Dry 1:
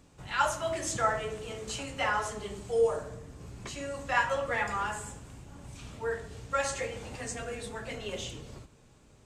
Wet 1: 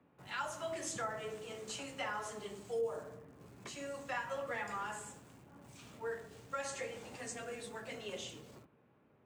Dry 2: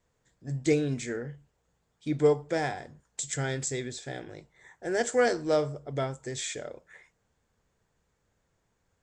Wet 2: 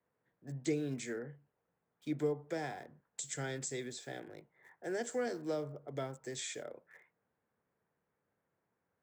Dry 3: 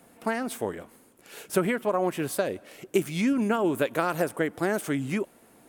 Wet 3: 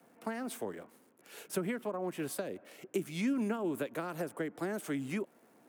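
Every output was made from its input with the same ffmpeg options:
-filter_complex "[0:a]highpass=160,acrossover=split=320[link_01][link_02];[link_02]acompressor=threshold=-31dB:ratio=4[link_03];[link_01][link_03]amix=inputs=2:normalize=0,acrossover=split=300|1300|2500[link_04][link_05][link_06][link_07];[link_07]aeval=exprs='val(0)*gte(abs(val(0)),0.00126)':channel_layout=same[link_08];[link_04][link_05][link_06][link_08]amix=inputs=4:normalize=0,volume=-6dB"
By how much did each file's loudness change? −9.5, −10.0, −9.5 LU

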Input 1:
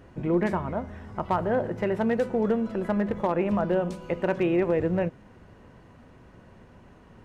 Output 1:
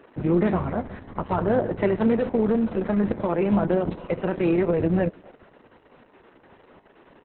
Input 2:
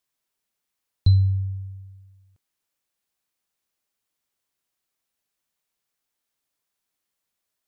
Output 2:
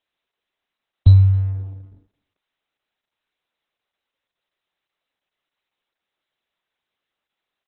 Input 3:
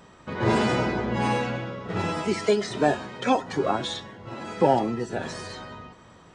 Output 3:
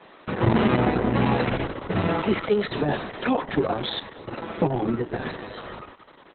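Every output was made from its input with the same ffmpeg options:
-filter_complex "[0:a]lowshelf=frequency=430:gain=4,acrossover=split=250[link_01][link_02];[link_01]aeval=exprs='sgn(val(0))*max(abs(val(0))-0.00596,0)':channel_layout=same[link_03];[link_02]alimiter=limit=-18dB:level=0:latency=1:release=11[link_04];[link_03][link_04]amix=inputs=2:normalize=0,asplit=2[link_05][link_06];[link_06]adelay=260,highpass=300,lowpass=3400,asoftclip=type=hard:threshold=-15dB,volume=-24dB[link_07];[link_05][link_07]amix=inputs=2:normalize=0,volume=3dB" -ar 48000 -c:a libopus -b:a 6k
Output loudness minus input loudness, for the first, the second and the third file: +3.0, +6.5, +1.0 LU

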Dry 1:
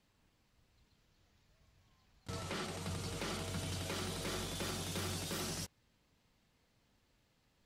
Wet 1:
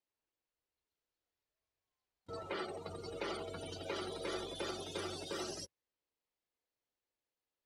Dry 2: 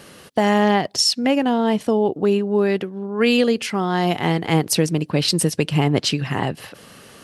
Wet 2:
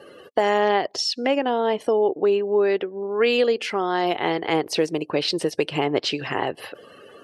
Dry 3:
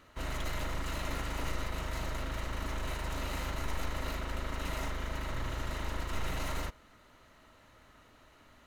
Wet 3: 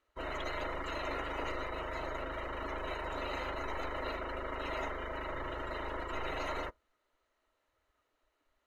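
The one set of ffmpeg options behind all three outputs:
-filter_complex "[0:a]afftdn=noise_reduction=22:noise_floor=-44,acrossover=split=5000[link_01][link_02];[link_02]acompressor=threshold=-43dB:ratio=4:attack=1:release=60[link_03];[link_01][link_03]amix=inputs=2:normalize=0,lowshelf=frequency=270:width_type=q:width=1.5:gain=-11,asplit=2[link_04][link_05];[link_05]acompressor=threshold=-28dB:ratio=6,volume=2dB[link_06];[link_04][link_06]amix=inputs=2:normalize=0,volume=-4.5dB"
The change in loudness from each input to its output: −2.0, −3.0, −1.0 LU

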